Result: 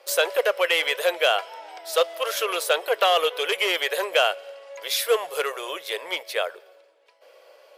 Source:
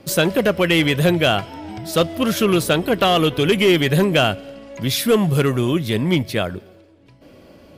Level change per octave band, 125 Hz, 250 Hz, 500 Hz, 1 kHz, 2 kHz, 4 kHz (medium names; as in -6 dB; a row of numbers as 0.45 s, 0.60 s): under -40 dB, -27.0 dB, -5.0 dB, -2.5 dB, -2.5 dB, -3.0 dB